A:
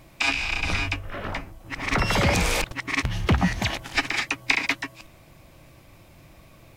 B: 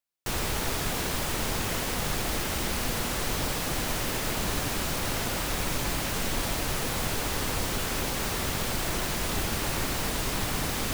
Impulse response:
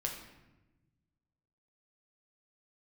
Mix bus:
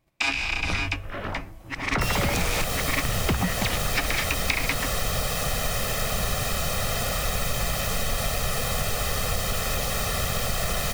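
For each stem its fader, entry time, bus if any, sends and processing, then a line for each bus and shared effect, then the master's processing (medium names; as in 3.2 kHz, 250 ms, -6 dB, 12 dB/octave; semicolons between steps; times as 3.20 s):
-0.5 dB, 0.00 s, send -20.5 dB, gate -47 dBFS, range -23 dB
+1.0 dB, 1.75 s, no send, comb 1.6 ms, depth 88%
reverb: on, RT60 1.1 s, pre-delay 6 ms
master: compression, threshold -20 dBFS, peak gain reduction 6.5 dB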